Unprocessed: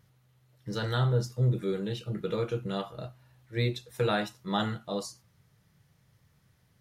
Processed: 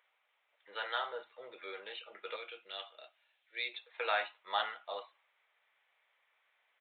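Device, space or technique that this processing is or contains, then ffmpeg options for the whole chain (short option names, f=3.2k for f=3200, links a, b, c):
musical greeting card: -filter_complex "[0:a]asettb=1/sr,asplit=3[a][b][c];[a]atrim=end=2.364[d];[b]atrim=start=2.36:end=3.74,asetpts=PTS-STARTPTS,afade=t=in:d=0.004:c=qsin,afade=t=out:st=1.376:d=0.004:c=qsin,equalizer=f=125:t=o:w=1:g=-10,equalizer=f=500:t=o:w=1:g=-5,equalizer=f=1k:t=o:w=1:g=-11,equalizer=f=2k:t=o:w=1:g=-4,equalizer=f=4k:t=o:w=1:g=5[e];[c]atrim=start=3.736[f];[d][e]acrossfade=d=0.004:c1=hsin:c2=qsin[g];[g][f]acrossfade=d=0.004:c1=qsin:c2=hsin,aresample=8000,aresample=44100,highpass=f=640:w=0.5412,highpass=f=640:w=1.3066,equalizer=f=2.3k:t=o:w=0.36:g=8,volume=-1.5dB"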